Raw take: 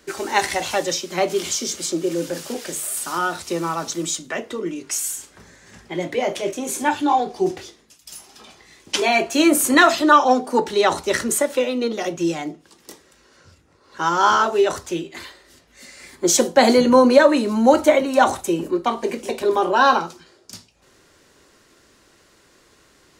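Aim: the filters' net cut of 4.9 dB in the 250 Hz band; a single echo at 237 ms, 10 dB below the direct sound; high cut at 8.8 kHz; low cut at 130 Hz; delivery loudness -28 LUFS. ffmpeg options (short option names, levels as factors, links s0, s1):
-af "highpass=130,lowpass=8800,equalizer=f=250:t=o:g=-6,aecho=1:1:237:0.316,volume=0.398"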